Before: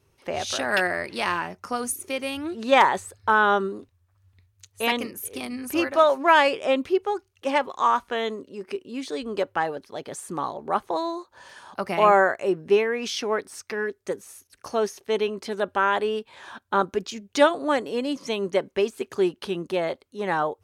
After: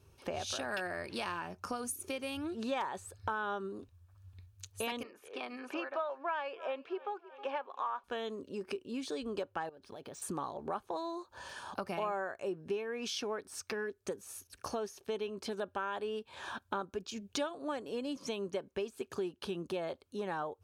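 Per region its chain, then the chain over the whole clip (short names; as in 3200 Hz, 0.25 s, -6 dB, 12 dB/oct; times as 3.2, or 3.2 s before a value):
5.03–8.04 BPF 550–2400 Hz + feedback echo 0.316 s, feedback 42%, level -24 dB
9.69–10.22 compressor 12:1, threshold -43 dBFS + decimation joined by straight lines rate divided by 3×
whole clip: bell 74 Hz +7 dB 1 oct; notch 2000 Hz, Q 6.1; compressor 4:1, threshold -37 dBFS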